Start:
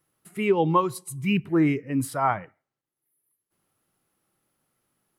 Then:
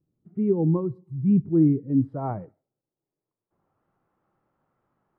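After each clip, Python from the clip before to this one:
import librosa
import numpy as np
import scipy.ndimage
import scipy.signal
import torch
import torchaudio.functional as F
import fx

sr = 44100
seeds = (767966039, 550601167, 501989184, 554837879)

y = fx.peak_eq(x, sr, hz=280.0, db=-2.5, octaves=2.1)
y = fx.filter_sweep_lowpass(y, sr, from_hz=270.0, to_hz=1100.0, start_s=1.76, end_s=3.88, q=1.2)
y = y * librosa.db_to_amplitude(4.5)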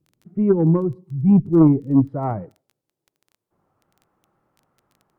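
y = fx.wow_flutter(x, sr, seeds[0], rate_hz=2.1, depth_cents=22.0)
y = fx.cheby_harmonics(y, sr, harmonics=(2, 4), levels_db=(-11, -18), full_scale_db=-10.0)
y = fx.dmg_crackle(y, sr, seeds[1], per_s=10.0, level_db=-45.0)
y = y * librosa.db_to_amplitude(5.5)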